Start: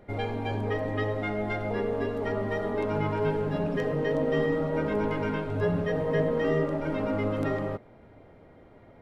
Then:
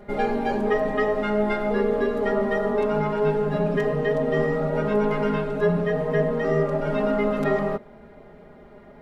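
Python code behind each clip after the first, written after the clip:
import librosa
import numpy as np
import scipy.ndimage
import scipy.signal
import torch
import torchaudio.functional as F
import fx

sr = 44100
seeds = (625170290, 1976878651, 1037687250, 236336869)

y = x + 0.96 * np.pad(x, (int(4.9 * sr / 1000.0), 0))[:len(x)]
y = fx.rider(y, sr, range_db=3, speed_s=0.5)
y = F.gain(torch.from_numpy(y), 2.0).numpy()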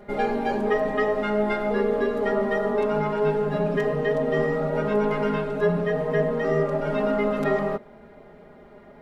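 y = fx.low_shelf(x, sr, hz=150.0, db=-4.5)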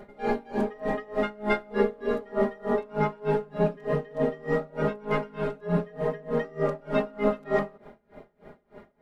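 y = x * 10.0 ** (-28 * (0.5 - 0.5 * np.cos(2.0 * np.pi * 3.3 * np.arange(len(x)) / sr)) / 20.0)
y = F.gain(torch.from_numpy(y), 2.5).numpy()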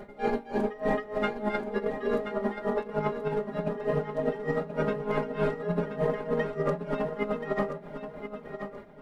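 y = fx.over_compress(x, sr, threshold_db=-26.0, ratio=-0.5)
y = fx.echo_feedback(y, sr, ms=1029, feedback_pct=26, wet_db=-9)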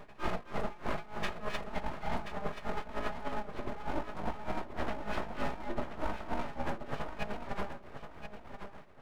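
y = fx.notch_comb(x, sr, f0_hz=620.0)
y = np.abs(y)
y = F.gain(torch.from_numpy(y), -3.0).numpy()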